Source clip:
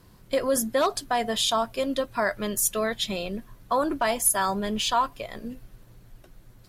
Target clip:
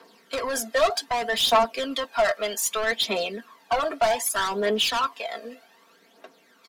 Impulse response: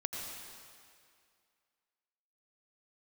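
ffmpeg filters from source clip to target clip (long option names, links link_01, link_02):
-filter_complex "[0:a]highpass=frequency=250:width=0.5412,highpass=frequency=250:width=1.3066,acrossover=split=400 6000:gain=0.224 1 0.224[link_01][link_02][link_03];[link_01][link_02][link_03]amix=inputs=3:normalize=0,aecho=1:1:4.4:0.74,asoftclip=type=tanh:threshold=-25.5dB,aphaser=in_gain=1:out_gain=1:delay=1.7:decay=0.57:speed=0.64:type=triangular,volume=5dB"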